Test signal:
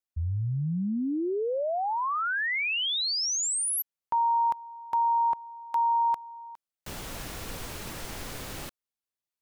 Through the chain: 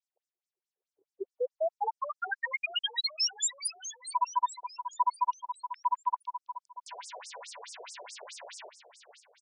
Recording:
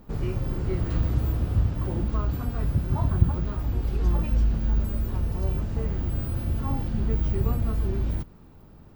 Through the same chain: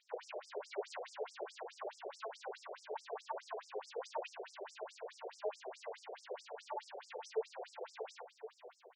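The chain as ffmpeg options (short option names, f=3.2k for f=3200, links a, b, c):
-filter_complex "[0:a]bandreject=f=1.2k:w=5.4,afreqshift=53,highpass=360,asplit=2[a][b];[b]aecho=0:1:510|1020|1530|2040|2550:0.251|0.128|0.0653|0.0333|0.017[c];[a][c]amix=inputs=2:normalize=0,afftfilt=real='re*between(b*sr/1024,520*pow(7100/520,0.5+0.5*sin(2*PI*4.7*pts/sr))/1.41,520*pow(7100/520,0.5+0.5*sin(2*PI*4.7*pts/sr))*1.41)':imag='im*between(b*sr/1024,520*pow(7100/520,0.5+0.5*sin(2*PI*4.7*pts/sr))/1.41,520*pow(7100/520,0.5+0.5*sin(2*PI*4.7*pts/sr))*1.41)':win_size=1024:overlap=0.75,volume=2.5dB"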